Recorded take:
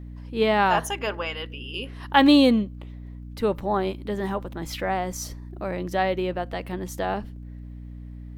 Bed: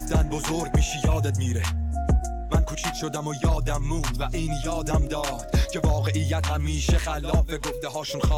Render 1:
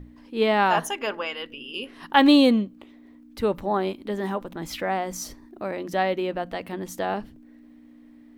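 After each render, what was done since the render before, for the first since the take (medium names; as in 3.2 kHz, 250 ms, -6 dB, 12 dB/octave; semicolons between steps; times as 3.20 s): hum notches 60/120/180 Hz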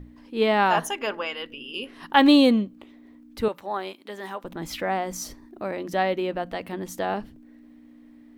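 3.48–4.44 s: high-pass 1 kHz 6 dB/octave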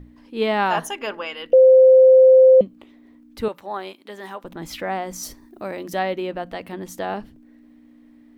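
1.53–2.61 s: bleep 520 Hz -7 dBFS; 5.23–5.99 s: treble shelf 6.3 kHz +9.5 dB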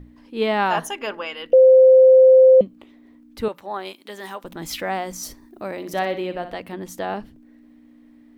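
3.85–5.12 s: treble shelf 3.1 kHz +7.5 dB; 5.76–6.60 s: flutter echo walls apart 10.4 m, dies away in 0.37 s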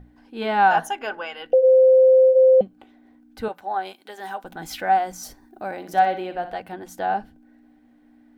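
flange 0.76 Hz, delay 1.6 ms, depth 2.8 ms, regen -77%; small resonant body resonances 770/1500 Hz, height 15 dB, ringing for 40 ms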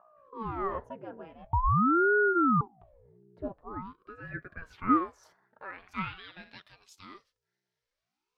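band-pass sweep 330 Hz -> 5.4 kHz, 3.59–7.25 s; ring modulator with a swept carrier 520 Hz, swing 80%, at 0.46 Hz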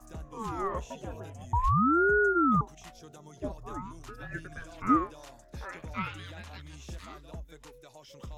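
add bed -21.5 dB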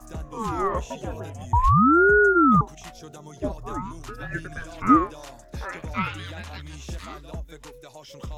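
trim +7.5 dB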